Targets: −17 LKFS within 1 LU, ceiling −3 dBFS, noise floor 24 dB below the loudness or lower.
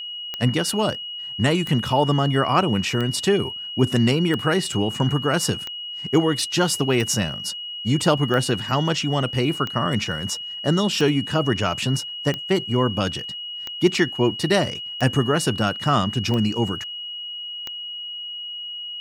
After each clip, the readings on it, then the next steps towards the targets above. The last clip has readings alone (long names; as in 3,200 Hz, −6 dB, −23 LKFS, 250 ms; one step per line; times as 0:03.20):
number of clicks 14; interfering tone 2,900 Hz; level of the tone −30 dBFS; integrated loudness −22.5 LKFS; sample peak −4.5 dBFS; target loudness −17.0 LKFS
→ click removal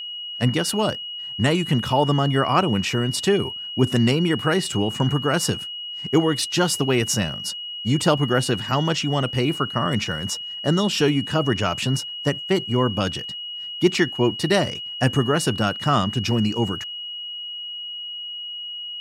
number of clicks 0; interfering tone 2,900 Hz; level of the tone −30 dBFS
→ notch filter 2,900 Hz, Q 30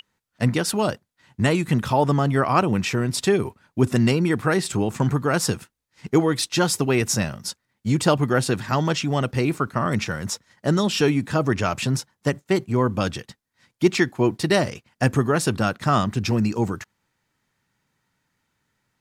interfering tone none found; integrated loudness −22.5 LKFS; sample peak −4.5 dBFS; target loudness −17.0 LKFS
→ level +5.5 dB
brickwall limiter −3 dBFS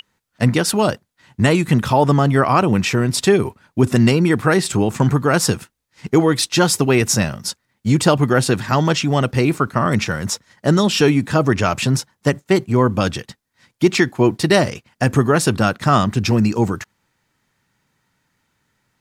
integrated loudness −17.0 LKFS; sample peak −3.0 dBFS; background noise floor −72 dBFS